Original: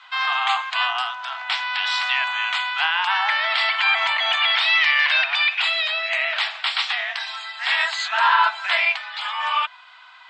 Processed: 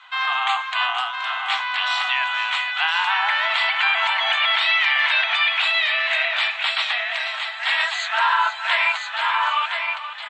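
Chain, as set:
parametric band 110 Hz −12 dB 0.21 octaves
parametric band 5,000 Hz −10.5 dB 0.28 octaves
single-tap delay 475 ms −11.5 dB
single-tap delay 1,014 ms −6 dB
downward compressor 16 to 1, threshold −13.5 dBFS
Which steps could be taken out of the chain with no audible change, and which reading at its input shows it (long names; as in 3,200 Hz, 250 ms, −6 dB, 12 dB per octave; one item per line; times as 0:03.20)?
parametric band 110 Hz: nothing at its input below 570 Hz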